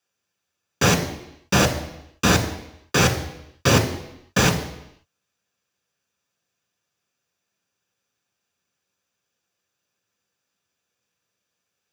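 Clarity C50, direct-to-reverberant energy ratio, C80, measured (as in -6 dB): 10.0 dB, 3.5 dB, 12.0 dB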